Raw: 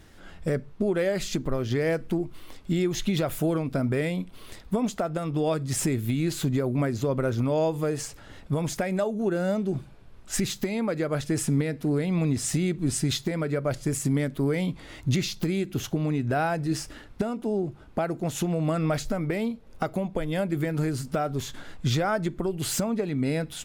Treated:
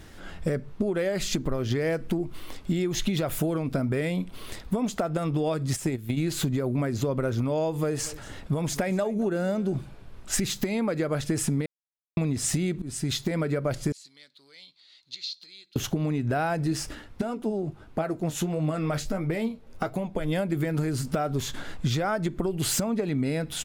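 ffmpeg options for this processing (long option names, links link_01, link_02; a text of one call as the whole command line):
ffmpeg -i in.wav -filter_complex "[0:a]asplit=3[link_01][link_02][link_03];[link_01]afade=type=out:start_time=5.75:duration=0.02[link_04];[link_02]agate=range=-13dB:threshold=-25dB:ratio=16:release=100:detection=peak,afade=type=in:start_time=5.75:duration=0.02,afade=type=out:start_time=6.16:duration=0.02[link_05];[link_03]afade=type=in:start_time=6.16:duration=0.02[link_06];[link_04][link_05][link_06]amix=inputs=3:normalize=0,asplit=3[link_07][link_08][link_09];[link_07]afade=type=out:start_time=7.95:duration=0.02[link_10];[link_08]aecho=1:1:231:0.0841,afade=type=in:start_time=7.95:duration=0.02,afade=type=out:start_time=9.72:duration=0.02[link_11];[link_09]afade=type=in:start_time=9.72:duration=0.02[link_12];[link_10][link_11][link_12]amix=inputs=3:normalize=0,asettb=1/sr,asplit=3[link_13][link_14][link_15];[link_13]atrim=end=13.924[link_16];[link_14]atrim=start=13.92:end=15.76,asetpts=PTS-STARTPTS,afade=type=in:duration=0.004:curve=qsin,afade=type=out:start_time=1.836:duration=0.004:curve=qsin,bandpass=frequency=4200:width_type=q:width=8.5[link_17];[link_15]atrim=start=15.756[link_18];[link_16][link_17]acrossfade=duration=0.004:curve1=hsin:curve2=qsin[link_19];[link_19][link_18]acrossfade=duration=0.004:curve1=qsin:curve2=hsin,asplit=3[link_20][link_21][link_22];[link_20]afade=type=out:start_time=16.94:duration=0.02[link_23];[link_21]flanger=delay=6.1:depth=7.6:regen=51:speed=1.5:shape=triangular,afade=type=in:start_time=16.94:duration=0.02,afade=type=out:start_time=20.24:duration=0.02[link_24];[link_22]afade=type=in:start_time=20.24:duration=0.02[link_25];[link_23][link_24][link_25]amix=inputs=3:normalize=0,asplit=4[link_26][link_27][link_28][link_29];[link_26]atrim=end=11.66,asetpts=PTS-STARTPTS,afade=type=out:start_time=11.656:duration=0.004:curve=hsin[link_30];[link_27]atrim=start=11.66:end=12.17,asetpts=PTS-STARTPTS,volume=0[link_31];[link_28]atrim=start=12.17:end=12.82,asetpts=PTS-STARTPTS,afade=type=in:duration=0.004:curve=hsin,afade=type=out:start_time=0.646:duration=0.004:curve=hsin:silence=0.0794328[link_32];[link_29]atrim=start=12.82,asetpts=PTS-STARTPTS,afade=type=in:duration=0.58:silence=0.0794328[link_33];[link_30][link_31][link_32][link_33]concat=n=4:v=0:a=1,acompressor=threshold=-28dB:ratio=6,volume=5dB" out.wav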